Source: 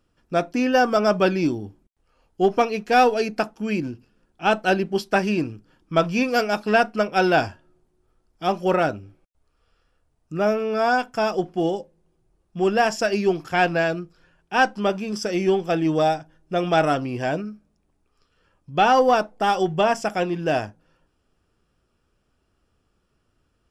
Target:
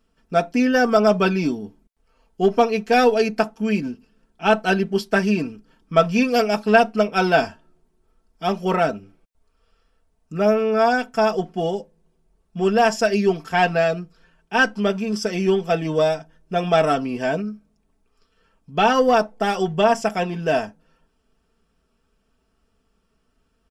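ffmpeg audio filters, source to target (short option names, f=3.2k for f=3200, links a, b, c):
-af "aecho=1:1:4.5:0.69"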